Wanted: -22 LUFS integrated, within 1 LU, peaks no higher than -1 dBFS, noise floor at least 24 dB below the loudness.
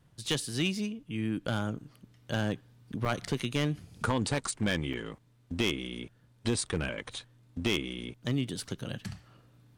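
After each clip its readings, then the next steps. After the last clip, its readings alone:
clipped samples 0.4%; clipping level -21.0 dBFS; dropouts 2; longest dropout 5.4 ms; loudness -33.5 LUFS; peak level -21.0 dBFS; loudness target -22.0 LUFS
-> clip repair -21 dBFS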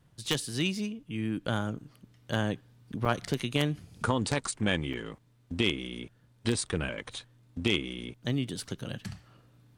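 clipped samples 0.0%; dropouts 2; longest dropout 5.4 ms
-> interpolate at 3.05/4.93 s, 5.4 ms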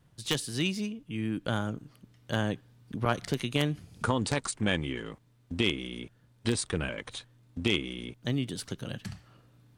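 dropouts 0; loudness -32.0 LUFS; peak level -12.0 dBFS; loudness target -22.0 LUFS
-> trim +10 dB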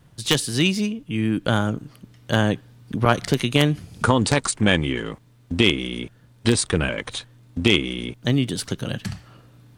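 loudness -22.0 LUFS; peak level -2.0 dBFS; noise floor -53 dBFS

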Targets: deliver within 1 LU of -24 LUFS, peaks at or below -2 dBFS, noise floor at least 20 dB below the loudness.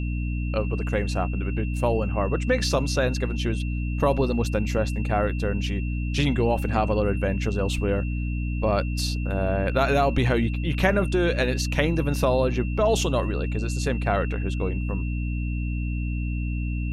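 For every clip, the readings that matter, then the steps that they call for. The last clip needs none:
hum 60 Hz; highest harmonic 300 Hz; hum level -24 dBFS; steady tone 2.7 kHz; tone level -40 dBFS; loudness -25.0 LUFS; peak level -5.5 dBFS; loudness target -24.0 LUFS
-> de-hum 60 Hz, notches 5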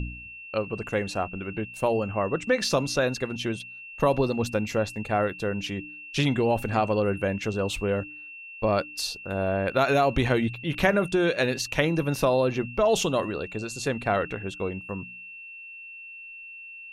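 hum not found; steady tone 2.7 kHz; tone level -40 dBFS
-> band-stop 2.7 kHz, Q 30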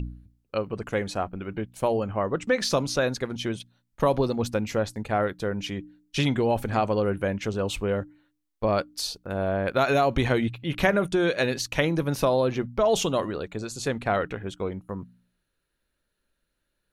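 steady tone not found; loudness -26.5 LUFS; peak level -7.0 dBFS; loudness target -24.0 LUFS
-> trim +2.5 dB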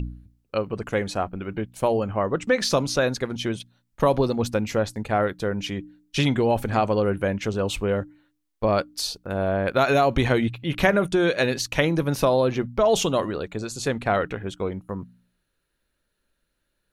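loudness -24.0 LUFS; peak level -4.5 dBFS; noise floor -76 dBFS

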